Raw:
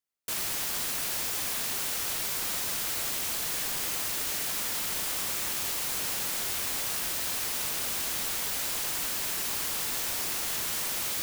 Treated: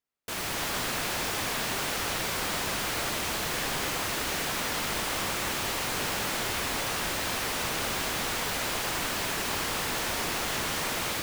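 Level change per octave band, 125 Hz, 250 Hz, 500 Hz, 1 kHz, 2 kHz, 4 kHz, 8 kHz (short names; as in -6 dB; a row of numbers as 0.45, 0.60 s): +9.0, +9.0, +9.0, +8.0, +6.0, +2.5, -2.0 dB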